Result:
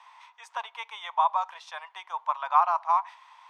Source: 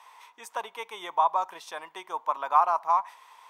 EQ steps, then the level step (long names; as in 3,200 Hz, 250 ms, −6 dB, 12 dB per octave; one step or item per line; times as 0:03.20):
inverse Chebyshev high-pass filter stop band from 270 Hz, stop band 50 dB
low-pass filter 5,000 Hz 12 dB per octave
dynamic equaliser 3,300 Hz, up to +3 dB, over −43 dBFS, Q 0.89
0.0 dB